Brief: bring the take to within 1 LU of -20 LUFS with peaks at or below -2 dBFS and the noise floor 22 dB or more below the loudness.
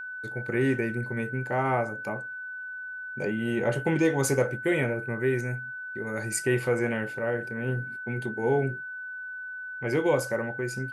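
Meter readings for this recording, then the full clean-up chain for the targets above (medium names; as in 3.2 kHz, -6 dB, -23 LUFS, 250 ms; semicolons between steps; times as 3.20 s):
steady tone 1.5 kHz; tone level -35 dBFS; loudness -29.0 LUFS; peak level -11.5 dBFS; loudness target -20.0 LUFS
-> band-stop 1.5 kHz, Q 30; trim +9 dB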